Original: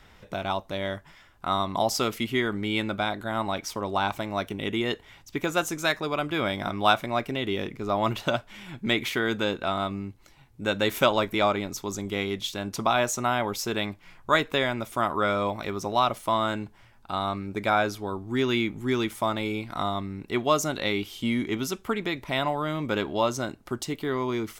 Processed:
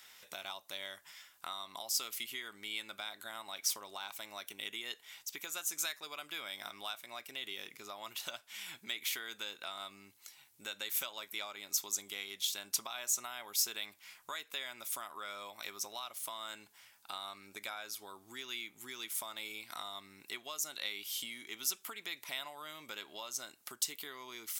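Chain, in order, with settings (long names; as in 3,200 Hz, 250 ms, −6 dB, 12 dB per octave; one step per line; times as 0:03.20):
downward compressor 10 to 1, threshold −33 dBFS, peak gain reduction 18 dB
first difference
level +8.5 dB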